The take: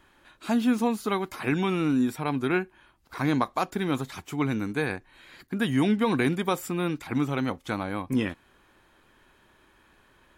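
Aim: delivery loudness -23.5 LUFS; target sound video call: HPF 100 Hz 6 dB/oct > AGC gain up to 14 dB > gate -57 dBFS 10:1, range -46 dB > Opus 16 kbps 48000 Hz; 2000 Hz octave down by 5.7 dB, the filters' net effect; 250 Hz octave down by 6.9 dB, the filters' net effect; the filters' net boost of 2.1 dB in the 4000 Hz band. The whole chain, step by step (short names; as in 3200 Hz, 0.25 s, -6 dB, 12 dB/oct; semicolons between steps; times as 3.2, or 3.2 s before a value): HPF 100 Hz 6 dB/oct; bell 250 Hz -7.5 dB; bell 2000 Hz -9 dB; bell 4000 Hz +5.5 dB; AGC gain up to 14 dB; gate -57 dBFS 10:1, range -46 dB; gain +9 dB; Opus 16 kbps 48000 Hz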